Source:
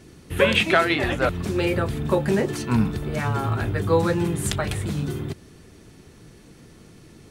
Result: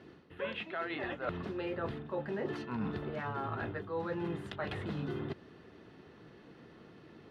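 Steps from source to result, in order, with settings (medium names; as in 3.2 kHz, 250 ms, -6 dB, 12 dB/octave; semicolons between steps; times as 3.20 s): high-pass 430 Hz 6 dB/octave; band-stop 2.3 kHz, Q 9.5; reverse; compression 16:1, threshold -32 dBFS, peak gain reduction 19 dB; reverse; distance through air 350 m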